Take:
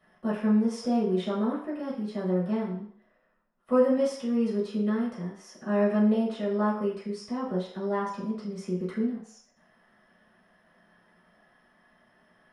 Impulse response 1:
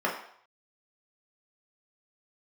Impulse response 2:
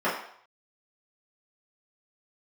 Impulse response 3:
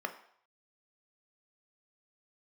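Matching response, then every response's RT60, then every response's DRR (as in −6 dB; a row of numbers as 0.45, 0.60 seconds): 2; 0.65, 0.65, 0.65 seconds; −3.5, −10.0, 6.0 decibels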